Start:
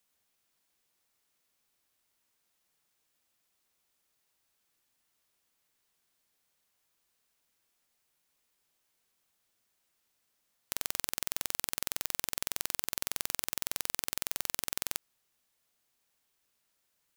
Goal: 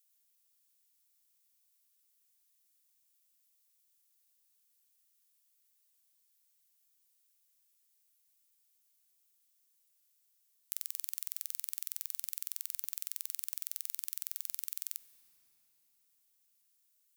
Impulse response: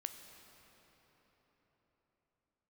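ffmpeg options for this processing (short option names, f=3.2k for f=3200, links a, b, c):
-filter_complex "[0:a]aderivative,acompressor=threshold=-35dB:ratio=3,asplit=2[a][b];[1:a]atrim=start_sample=2205,lowshelf=f=360:g=7[c];[b][c]afir=irnorm=-1:irlink=0,volume=-2.5dB[d];[a][d]amix=inputs=2:normalize=0,volume=-2.5dB"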